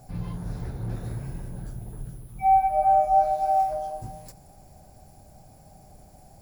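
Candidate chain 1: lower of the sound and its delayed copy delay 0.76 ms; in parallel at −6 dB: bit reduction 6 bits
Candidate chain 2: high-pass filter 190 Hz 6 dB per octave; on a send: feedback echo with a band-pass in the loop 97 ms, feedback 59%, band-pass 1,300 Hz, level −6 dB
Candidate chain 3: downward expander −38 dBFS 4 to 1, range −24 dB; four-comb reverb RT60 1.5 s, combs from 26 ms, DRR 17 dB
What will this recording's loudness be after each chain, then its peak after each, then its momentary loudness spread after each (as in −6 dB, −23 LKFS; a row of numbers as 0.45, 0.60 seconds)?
−26.0, −22.0, −23.5 LKFS; −9.5, −9.5, −10.5 dBFS; 16, 21, 19 LU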